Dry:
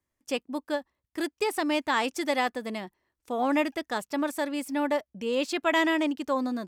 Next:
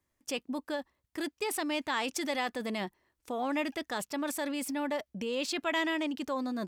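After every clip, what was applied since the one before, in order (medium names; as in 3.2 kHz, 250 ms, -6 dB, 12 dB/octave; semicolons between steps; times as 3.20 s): dynamic bell 3.4 kHz, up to +4 dB, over -43 dBFS, Q 0.85; in parallel at +1 dB: compressor with a negative ratio -36 dBFS, ratio -1; on the sum: trim -8.5 dB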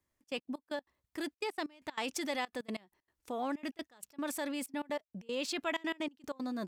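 trance gate "xxx.x.x..x.xxx" 190 bpm -24 dB; trim -3 dB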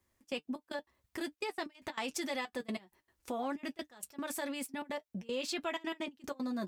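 compression 2:1, threshold -45 dBFS, peak gain reduction 8.5 dB; comb of notches 150 Hz; trim +7 dB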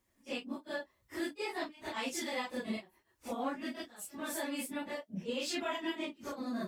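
phase randomisation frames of 100 ms; trim +1 dB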